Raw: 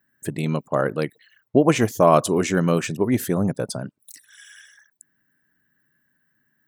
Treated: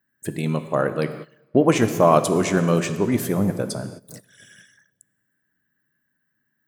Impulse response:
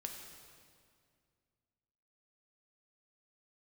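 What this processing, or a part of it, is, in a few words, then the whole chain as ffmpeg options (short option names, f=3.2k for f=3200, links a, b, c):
keyed gated reverb: -filter_complex "[0:a]asplit=3[a][b][c];[1:a]atrim=start_sample=2205[d];[b][d]afir=irnorm=-1:irlink=0[e];[c]apad=whole_len=294480[f];[e][f]sidechaingate=range=-19dB:threshold=-44dB:ratio=16:detection=peak,volume=2.5dB[g];[a][g]amix=inputs=2:normalize=0,volume=-5.5dB"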